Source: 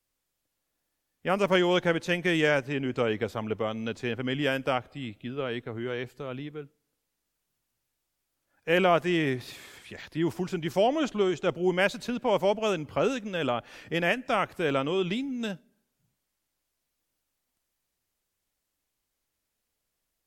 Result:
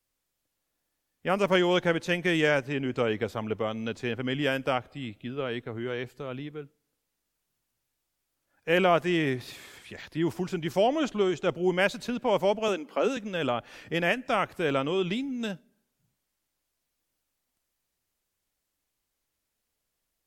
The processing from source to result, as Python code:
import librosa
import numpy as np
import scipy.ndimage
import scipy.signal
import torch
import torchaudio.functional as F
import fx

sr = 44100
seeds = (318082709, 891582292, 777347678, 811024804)

y = fx.ellip_highpass(x, sr, hz=200.0, order=4, stop_db=40, at=(12.68, 13.17))